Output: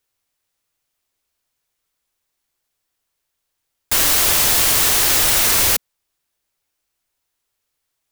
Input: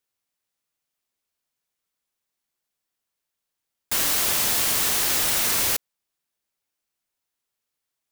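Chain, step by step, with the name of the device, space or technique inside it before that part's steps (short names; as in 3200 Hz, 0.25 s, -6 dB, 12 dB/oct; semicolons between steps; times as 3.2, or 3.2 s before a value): low shelf boost with a cut just above (low shelf 87 Hz +8 dB; bell 200 Hz -6 dB 0.51 oct); gain +7 dB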